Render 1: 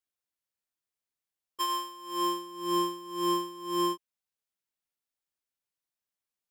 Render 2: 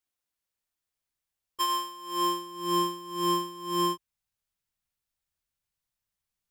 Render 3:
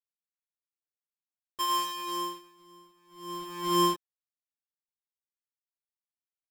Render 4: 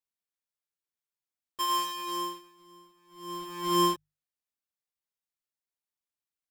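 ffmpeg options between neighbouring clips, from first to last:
-af "asubboost=boost=6:cutoff=130,volume=1.41"
-filter_complex "[0:a]asplit=2[s0][s1];[s1]acompressor=threshold=0.0178:ratio=6,volume=1.33[s2];[s0][s2]amix=inputs=2:normalize=0,acrusher=bits=5:mix=0:aa=0.5,aeval=exprs='val(0)*pow(10,-32*(0.5-0.5*cos(2*PI*0.53*n/s))/20)':c=same"
-af "bandreject=f=50:t=h:w=6,bandreject=f=100:t=h:w=6,bandreject=f=150:t=h:w=6"

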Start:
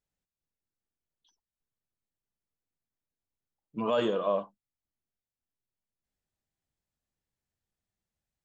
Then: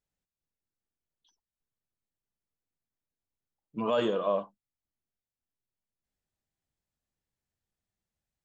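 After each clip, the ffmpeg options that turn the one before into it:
-af anull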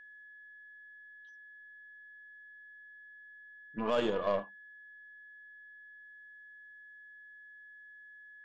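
-af "aeval=exprs='val(0)+0.00447*sin(2*PI*1700*n/s)':c=same,aeval=exprs='0.141*(cos(1*acos(clip(val(0)/0.141,-1,1)))-cos(1*PI/2))+0.01*(cos(3*acos(clip(val(0)/0.141,-1,1)))-cos(3*PI/2))+0.00794*(cos(6*acos(clip(val(0)/0.141,-1,1)))-cos(6*PI/2))':c=same,volume=0.794"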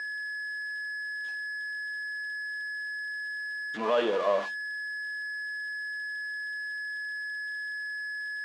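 -af "aeval=exprs='val(0)+0.5*0.0188*sgn(val(0))':c=same,highpass=350,lowpass=4000,volume=1.58"

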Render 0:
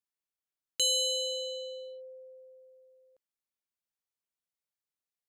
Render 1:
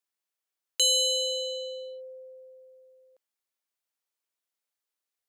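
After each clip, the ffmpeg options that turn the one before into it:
-af "highpass=330,volume=1.68"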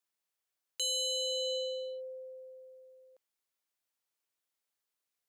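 -af "alimiter=level_in=1.5:limit=0.0631:level=0:latency=1,volume=0.668"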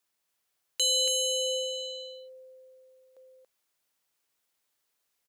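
-af "aecho=1:1:281:0.596,volume=2.37"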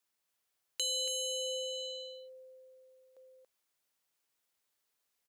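-af "acompressor=threshold=0.0282:ratio=2.5,volume=0.668"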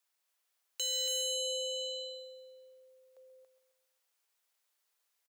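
-filter_complex "[0:a]highpass=500,aecho=1:1:133|266|399|532|665:0.224|0.11|0.0538|0.0263|0.0129,acrossover=split=1100[s0][s1];[s1]asoftclip=type=hard:threshold=0.0237[s2];[s0][s2]amix=inputs=2:normalize=0,volume=1.19"

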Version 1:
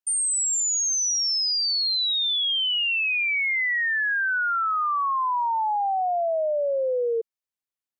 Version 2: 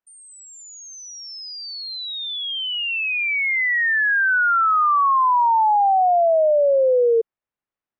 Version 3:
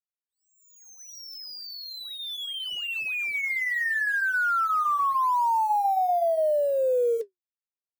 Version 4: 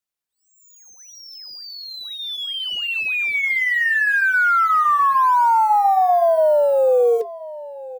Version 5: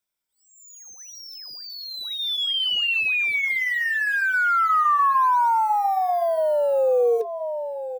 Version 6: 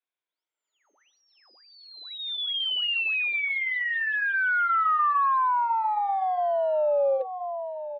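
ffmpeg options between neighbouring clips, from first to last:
-af "lowpass=1800,volume=2.51"
-af "acrusher=bits=5:mix=0:aa=0.5,flanger=delay=2.8:depth=6.1:regen=-69:speed=0.45:shape=sinusoidal,volume=0.708"
-filter_complex "[0:a]acrossover=split=250|740|4600[s0][s1][s2][s3];[s3]acompressor=threshold=0.00178:ratio=6[s4];[s0][s1][s2][s4]amix=inputs=4:normalize=0,asplit=2[s5][s6];[s6]adelay=1029,lowpass=f=4900:p=1,volume=0.133,asplit=2[s7][s8];[s8]adelay=1029,lowpass=f=4900:p=1,volume=0.24[s9];[s5][s7][s9]amix=inputs=3:normalize=0,volume=2.51"
-af "afftfilt=real='re*pow(10,8/40*sin(2*PI*(1.6*log(max(b,1)*sr/1024/100)/log(2)-(-0.53)*(pts-256)/sr)))':imag='im*pow(10,8/40*sin(2*PI*(1.6*log(max(b,1)*sr/1024/100)/log(2)-(-0.53)*(pts-256)/sr)))':win_size=1024:overlap=0.75,acompressor=threshold=0.0501:ratio=2,volume=1.26"
-af "highpass=f=210:t=q:w=0.5412,highpass=f=210:t=q:w=1.307,lowpass=f=3600:t=q:w=0.5176,lowpass=f=3600:t=q:w=0.7071,lowpass=f=3600:t=q:w=1.932,afreqshift=75,volume=0.631"

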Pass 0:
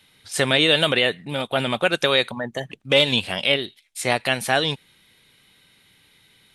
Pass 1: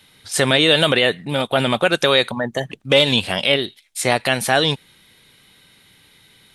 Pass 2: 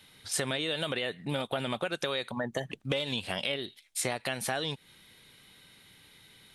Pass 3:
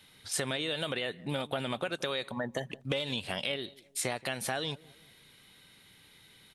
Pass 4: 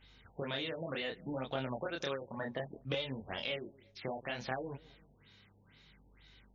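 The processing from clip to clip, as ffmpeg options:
-filter_complex "[0:a]equalizer=f=2500:t=o:w=0.77:g=-2.5,asplit=2[s0][s1];[s1]alimiter=limit=0.282:level=0:latency=1:release=39,volume=1.19[s2];[s0][s2]amix=inputs=2:normalize=0,volume=0.891"
-af "acompressor=threshold=0.0708:ratio=10,volume=0.562"
-filter_complex "[0:a]asplit=2[s0][s1];[s1]adelay=177,lowpass=f=870:p=1,volume=0.1,asplit=2[s2][s3];[s3]adelay=177,lowpass=f=870:p=1,volume=0.46,asplit=2[s4][s5];[s5]adelay=177,lowpass=f=870:p=1,volume=0.46[s6];[s0][s2][s4][s6]amix=inputs=4:normalize=0,volume=0.841"
-af "aeval=exprs='val(0)+0.001*(sin(2*PI*50*n/s)+sin(2*PI*2*50*n/s)/2+sin(2*PI*3*50*n/s)/3+sin(2*PI*4*50*n/s)/4+sin(2*PI*5*50*n/s)/5)':c=same,flanger=delay=22.5:depth=7.9:speed=0.64,afftfilt=real='re*lt(b*sr/1024,920*pow(7200/920,0.5+0.5*sin(2*PI*2.1*pts/sr)))':imag='im*lt(b*sr/1024,920*pow(7200/920,0.5+0.5*sin(2*PI*2.1*pts/sr)))':win_size=1024:overlap=0.75,volume=0.891"

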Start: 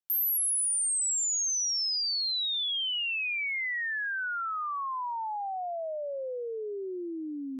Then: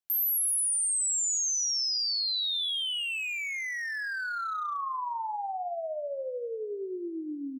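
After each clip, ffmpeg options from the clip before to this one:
-filter_complex "[0:a]aecho=1:1:46|250:0.266|0.141,acrossover=split=1300|3100[s0][s1][s2];[s1]asoftclip=type=hard:threshold=0.0141[s3];[s0][s3][s2]amix=inputs=3:normalize=0"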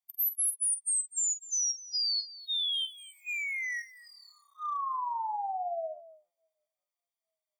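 -af "afftfilt=real='re*eq(mod(floor(b*sr/1024/620),2),1)':imag='im*eq(mod(floor(b*sr/1024/620),2),1)':win_size=1024:overlap=0.75"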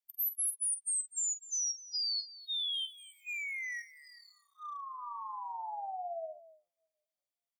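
-filter_complex "[0:a]acrossover=split=1100[s0][s1];[s0]adelay=390[s2];[s2][s1]amix=inputs=2:normalize=0,volume=0.631"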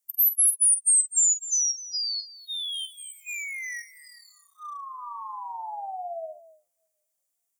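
-filter_complex "[0:a]highshelf=f=5600:t=q:w=1.5:g=9.5,asplit=2[s0][s1];[s1]acompressor=threshold=0.0316:ratio=6,volume=0.794[s2];[s0][s2]amix=inputs=2:normalize=0"

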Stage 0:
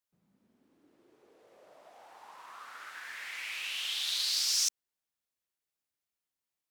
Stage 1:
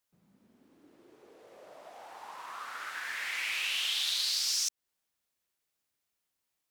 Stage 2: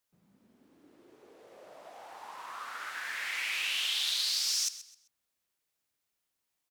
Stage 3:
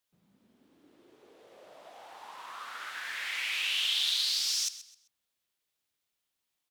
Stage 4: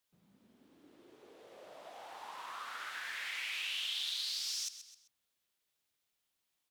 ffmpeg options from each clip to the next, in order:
-af "acompressor=threshold=0.02:ratio=6,volume=2"
-af "aecho=1:1:130|260|390:0.178|0.0516|0.015"
-af "equalizer=f=3400:t=o:w=0.76:g=5,volume=0.841"
-af "acompressor=threshold=0.00794:ratio=2"

